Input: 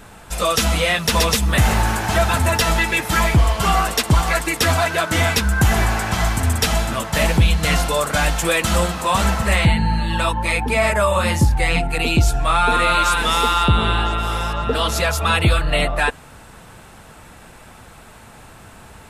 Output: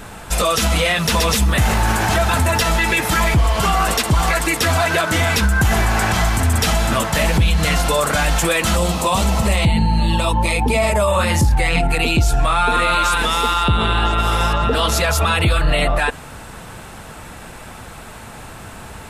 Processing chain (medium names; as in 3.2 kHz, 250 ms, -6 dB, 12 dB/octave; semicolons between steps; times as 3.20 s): 8.77–11.08 s: peaking EQ 1.6 kHz -11.5 dB 0.75 oct; peak limiter -15 dBFS, peak gain reduction 9.5 dB; trim +7 dB